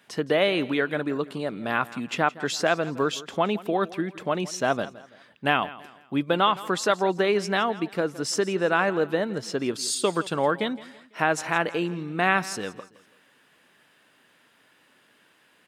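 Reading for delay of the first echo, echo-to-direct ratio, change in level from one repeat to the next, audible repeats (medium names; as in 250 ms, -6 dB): 166 ms, -17.5 dB, -8.0 dB, 3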